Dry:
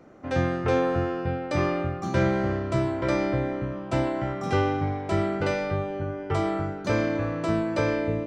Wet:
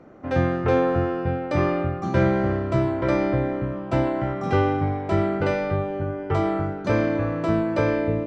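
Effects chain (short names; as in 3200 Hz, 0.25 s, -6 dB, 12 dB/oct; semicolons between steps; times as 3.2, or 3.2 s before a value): LPF 2300 Hz 6 dB/oct; gain +3.5 dB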